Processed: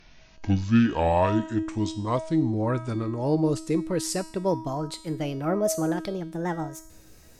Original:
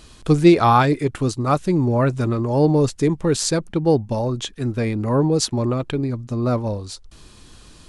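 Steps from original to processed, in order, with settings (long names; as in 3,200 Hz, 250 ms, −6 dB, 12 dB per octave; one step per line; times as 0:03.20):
gliding playback speed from 57% → 156%
tuned comb filter 320 Hz, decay 0.68 s, mix 80%
level +5 dB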